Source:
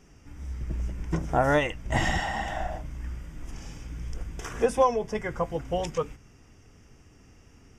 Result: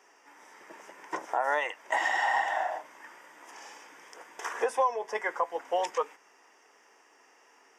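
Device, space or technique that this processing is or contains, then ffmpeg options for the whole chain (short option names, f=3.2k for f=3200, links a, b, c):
laptop speaker: -filter_complex "[0:a]highpass=f=410:w=0.5412,highpass=f=410:w=1.3066,equalizer=f=940:t=o:w=0.56:g=11,equalizer=f=1.8k:t=o:w=0.39:g=7.5,alimiter=limit=-15dB:level=0:latency=1:release=255,asettb=1/sr,asplit=3[a][b][c];[a]atrim=end=1.254[d];[b]atrim=start=1.25:end=2.01,asetpts=PTS-STARTPTS,afade=t=in:d=0.004:c=qsin,afade=t=out:st=0.756:d=0.004:c=qsin,highpass=f=250:p=1[e];[c]atrim=start=2.006[f];[d][e]acrossfade=d=0.004:c1=hsin:c2=qsin[g];[g][f]acrossfade=d=0.004:c1=qsin:c2=hsin,volume=-1.5dB"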